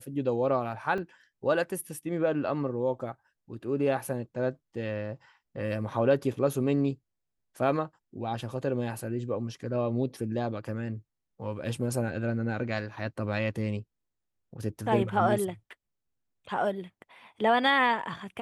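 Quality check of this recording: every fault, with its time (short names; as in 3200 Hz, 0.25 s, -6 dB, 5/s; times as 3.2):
0.98 gap 2.3 ms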